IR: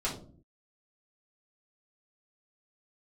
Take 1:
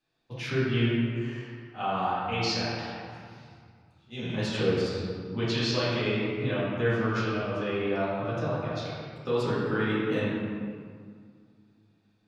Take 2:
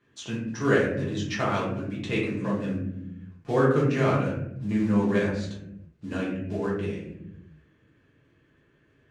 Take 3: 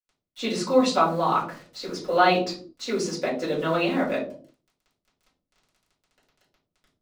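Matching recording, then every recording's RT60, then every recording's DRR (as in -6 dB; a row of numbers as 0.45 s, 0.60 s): 3; 2.0 s, 0.85 s, no single decay rate; -11.0 dB, -6.5 dB, -7.5 dB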